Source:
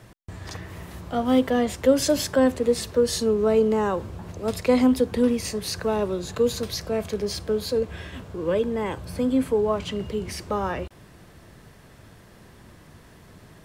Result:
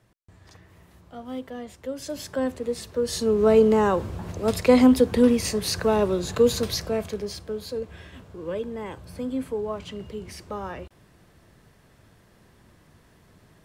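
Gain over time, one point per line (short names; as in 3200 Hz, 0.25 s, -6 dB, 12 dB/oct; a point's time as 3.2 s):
1.96 s -14.5 dB
2.38 s -7 dB
2.89 s -7 dB
3.48 s +3 dB
6.71 s +3 dB
7.44 s -7 dB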